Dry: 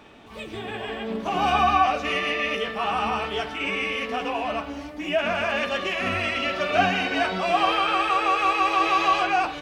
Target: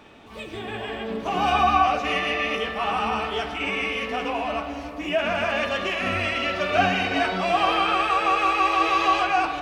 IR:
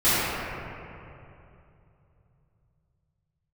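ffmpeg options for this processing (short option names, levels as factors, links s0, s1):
-filter_complex "[0:a]asplit=2[s0][s1];[1:a]atrim=start_sample=2205,asetrate=43659,aresample=44100,adelay=26[s2];[s1][s2]afir=irnorm=-1:irlink=0,volume=0.0335[s3];[s0][s3]amix=inputs=2:normalize=0"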